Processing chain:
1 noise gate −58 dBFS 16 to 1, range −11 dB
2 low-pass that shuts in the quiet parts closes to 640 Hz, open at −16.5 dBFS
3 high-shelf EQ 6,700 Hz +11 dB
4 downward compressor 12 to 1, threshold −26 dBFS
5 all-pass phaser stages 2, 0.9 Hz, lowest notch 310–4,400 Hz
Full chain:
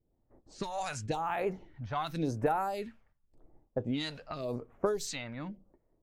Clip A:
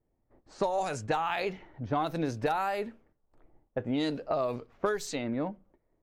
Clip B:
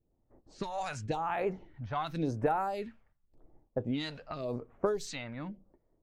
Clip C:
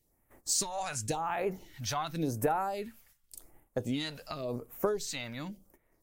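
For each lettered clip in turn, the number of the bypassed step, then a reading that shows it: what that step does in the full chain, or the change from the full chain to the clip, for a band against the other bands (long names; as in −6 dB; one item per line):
5, 8 kHz band −4.0 dB
3, 8 kHz band −5.5 dB
2, 8 kHz band +11.0 dB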